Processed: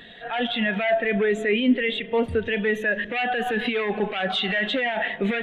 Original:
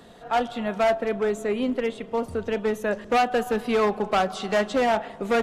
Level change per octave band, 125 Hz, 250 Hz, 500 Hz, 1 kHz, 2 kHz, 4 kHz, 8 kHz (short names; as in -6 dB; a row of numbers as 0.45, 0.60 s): +4.0 dB, +3.0 dB, -1.0 dB, -4.5 dB, +7.0 dB, +7.5 dB, n/a